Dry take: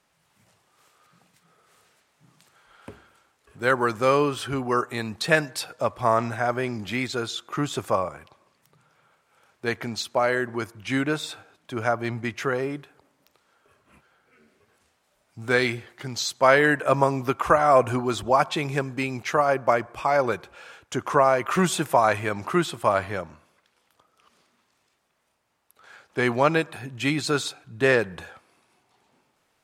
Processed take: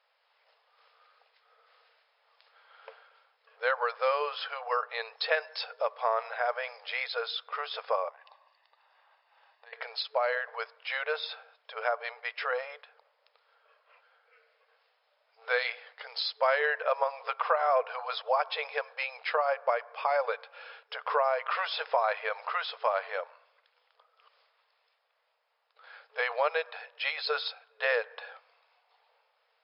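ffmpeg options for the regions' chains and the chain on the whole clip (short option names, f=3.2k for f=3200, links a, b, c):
-filter_complex "[0:a]asettb=1/sr,asplit=3[a][b][c];[a]atrim=end=8.094[d];[b]atrim=start=8.09:end=9.73,asetpts=PTS-STARTPTS,afade=t=in:d=0.004:c=qsin,afade=t=out:st=1.636:d=0.004:c=qsin,aecho=1:1:1.1:0.66,atrim=end_sample=72324,acompressor=threshold=-45dB:ratio=12:attack=3.2:release=140:knee=1:detection=peak[e];[c]atrim=start=9.726[f];[d][e]acrossfade=d=0.004:c1=hsin:c2=qsin[g];[g][f]acrossfade=d=0.004:c1=qsin:c2=hsin,afftfilt=real='re*between(b*sr/4096,440,5300)':imag='im*between(b*sr/4096,440,5300)':win_size=4096:overlap=0.75,acompressor=threshold=-25dB:ratio=2,volume=-2dB"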